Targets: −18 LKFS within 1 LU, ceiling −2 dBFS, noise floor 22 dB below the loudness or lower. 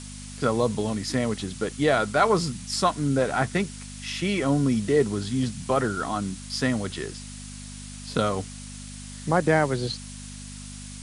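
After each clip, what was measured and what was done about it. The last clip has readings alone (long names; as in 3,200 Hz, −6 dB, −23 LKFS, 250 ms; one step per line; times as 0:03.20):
mains hum 50 Hz; hum harmonics up to 250 Hz; level of the hum −38 dBFS; background noise floor −40 dBFS; target noise floor −48 dBFS; integrated loudness −25.5 LKFS; sample peak −7.5 dBFS; target loudness −18.0 LKFS
→ hum removal 50 Hz, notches 5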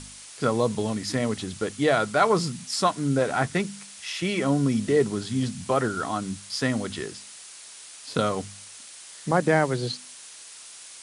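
mains hum none found; background noise floor −45 dBFS; target noise floor −48 dBFS
→ noise reduction from a noise print 6 dB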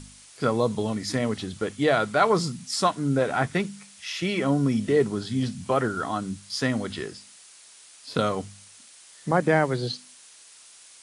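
background noise floor −51 dBFS; integrated loudness −25.5 LKFS; sample peak −7.5 dBFS; target loudness −18.0 LKFS
→ level +7.5 dB
brickwall limiter −2 dBFS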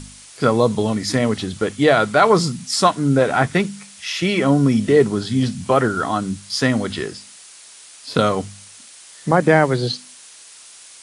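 integrated loudness −18.5 LKFS; sample peak −2.0 dBFS; background noise floor −43 dBFS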